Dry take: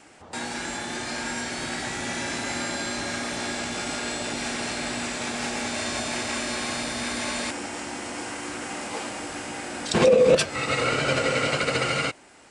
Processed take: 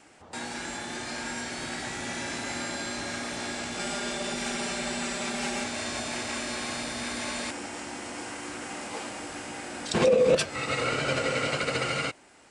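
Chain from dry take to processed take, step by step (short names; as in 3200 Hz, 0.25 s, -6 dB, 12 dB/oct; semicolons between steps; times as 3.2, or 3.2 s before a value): 3.79–5.64 comb 5.1 ms, depth 84%; gain -4 dB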